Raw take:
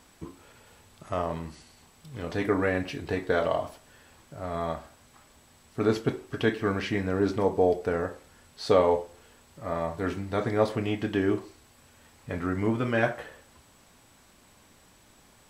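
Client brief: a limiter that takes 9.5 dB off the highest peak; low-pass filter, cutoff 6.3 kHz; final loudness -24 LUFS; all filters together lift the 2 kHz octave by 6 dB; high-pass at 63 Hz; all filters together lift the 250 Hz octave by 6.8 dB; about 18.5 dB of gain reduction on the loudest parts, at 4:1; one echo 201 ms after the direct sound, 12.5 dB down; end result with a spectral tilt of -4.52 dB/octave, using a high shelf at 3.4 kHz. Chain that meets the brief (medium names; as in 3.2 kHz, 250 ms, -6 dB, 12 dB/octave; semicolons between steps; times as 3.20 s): high-pass 63 Hz; low-pass 6.3 kHz; peaking EQ 250 Hz +8.5 dB; peaking EQ 2 kHz +6 dB; treble shelf 3.4 kHz +6 dB; compression 4:1, threshold -38 dBFS; peak limiter -31 dBFS; delay 201 ms -12.5 dB; trim +20 dB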